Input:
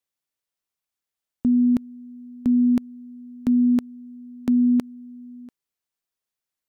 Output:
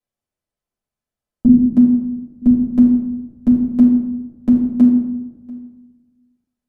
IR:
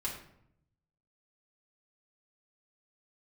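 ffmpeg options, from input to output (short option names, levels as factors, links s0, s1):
-filter_complex "[0:a]asettb=1/sr,asplit=3[s0][s1][s2];[s0]atrim=end=1.484[s3];[s1]atrim=start=1.48:end=2.42,asetpts=PTS-STARTPTS,afade=t=in:d=0.004:c=qsin,afade=t=out:st=0.936:d=0.004:c=qsin,highpass=f=130:w=0.5412,highpass=f=130:w=1.3066[s4];[s2]atrim=start=2.416[s5];[s3][s4]acrossfade=d=0.004:c1=hsin:c2=qsin[s6];[s6][s5]acrossfade=d=0.004:c1=qsin:c2=hsin,tiltshelf=f=790:g=7.5[s7];[1:a]atrim=start_sample=2205,asetrate=26901,aresample=44100[s8];[s7][s8]afir=irnorm=-1:irlink=0,volume=0.841"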